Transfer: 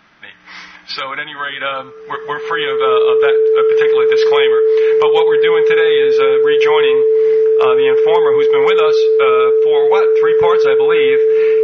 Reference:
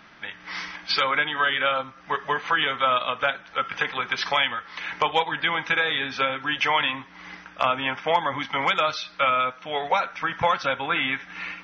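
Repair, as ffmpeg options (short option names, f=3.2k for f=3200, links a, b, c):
-af "bandreject=f=440:w=30,asetnsamples=n=441:p=0,asendcmd='1.61 volume volume -3dB',volume=0dB"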